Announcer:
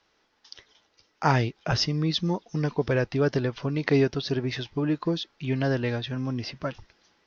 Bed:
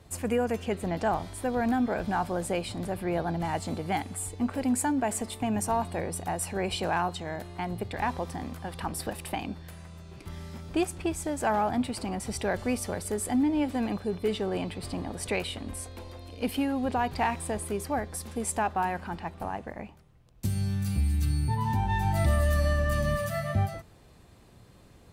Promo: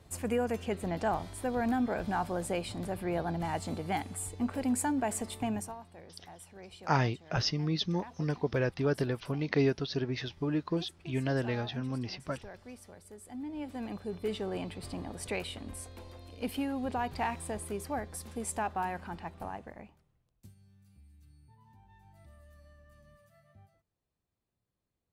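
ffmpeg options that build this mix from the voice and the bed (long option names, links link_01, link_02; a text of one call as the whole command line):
ffmpeg -i stem1.wav -i stem2.wav -filter_complex "[0:a]adelay=5650,volume=-5.5dB[link_01];[1:a]volume=10.5dB,afade=type=out:start_time=5.47:duration=0.28:silence=0.158489,afade=type=in:start_time=13.26:duration=1.07:silence=0.199526,afade=type=out:start_time=19.4:duration=1.15:silence=0.0446684[link_02];[link_01][link_02]amix=inputs=2:normalize=0" out.wav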